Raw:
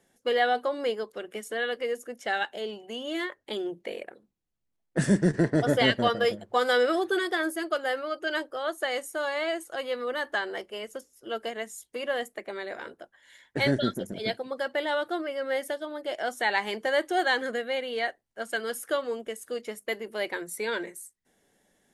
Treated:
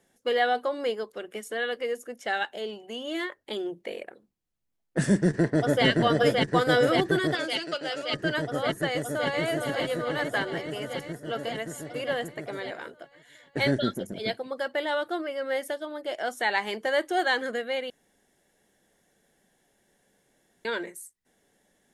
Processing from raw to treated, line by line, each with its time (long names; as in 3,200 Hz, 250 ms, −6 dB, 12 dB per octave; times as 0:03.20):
0:05.27–0:05.86: delay throw 570 ms, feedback 85%, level −2 dB
0:07.35–0:08.14: loudspeaker in its box 440–8,800 Hz, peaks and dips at 450 Hz −8 dB, 730 Hz −5 dB, 1,100 Hz −8 dB, 1,800 Hz −8 dB, 2,600 Hz +9 dB, 4,700 Hz +8 dB
0:08.91–0:09.44: delay throw 420 ms, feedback 70%, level −5.5 dB
0:17.90–0:20.65: fill with room tone